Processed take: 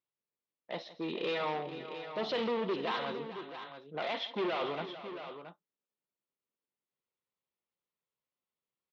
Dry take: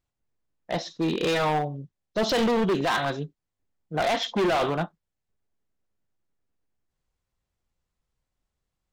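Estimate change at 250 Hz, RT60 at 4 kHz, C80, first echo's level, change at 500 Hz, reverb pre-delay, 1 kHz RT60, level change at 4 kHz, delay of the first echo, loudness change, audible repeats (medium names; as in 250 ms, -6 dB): -12.0 dB, no reverb, no reverb, -16.5 dB, -9.0 dB, no reverb, no reverb, -8.5 dB, 164 ms, -10.5 dB, 3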